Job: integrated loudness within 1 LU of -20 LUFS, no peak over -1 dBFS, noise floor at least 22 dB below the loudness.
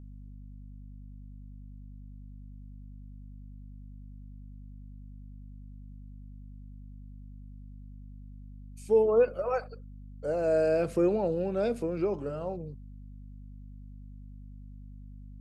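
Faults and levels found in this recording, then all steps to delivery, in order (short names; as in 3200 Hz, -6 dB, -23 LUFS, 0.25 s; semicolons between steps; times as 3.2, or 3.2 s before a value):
hum 50 Hz; harmonics up to 250 Hz; hum level -43 dBFS; loudness -28.5 LUFS; peak -14.5 dBFS; loudness target -20.0 LUFS
-> de-hum 50 Hz, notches 5; gain +8.5 dB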